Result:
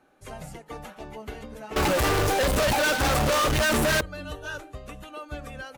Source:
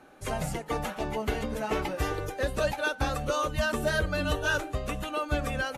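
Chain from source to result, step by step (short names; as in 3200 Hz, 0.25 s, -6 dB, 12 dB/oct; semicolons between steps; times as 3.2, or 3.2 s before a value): 1.76–4.01 fuzz box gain 55 dB, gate -46 dBFS; gain -8 dB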